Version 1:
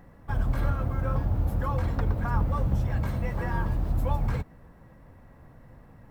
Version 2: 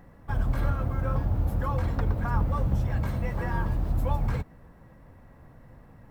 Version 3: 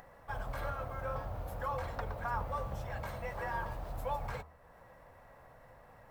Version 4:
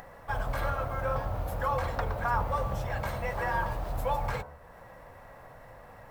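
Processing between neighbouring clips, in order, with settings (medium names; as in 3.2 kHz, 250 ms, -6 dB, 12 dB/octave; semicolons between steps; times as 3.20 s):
no audible change
resonant low shelf 410 Hz -11 dB, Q 1.5; de-hum 77.05 Hz, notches 17; upward compressor, threshold -46 dBFS; trim -4 dB
de-hum 72.61 Hz, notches 21; trim +8 dB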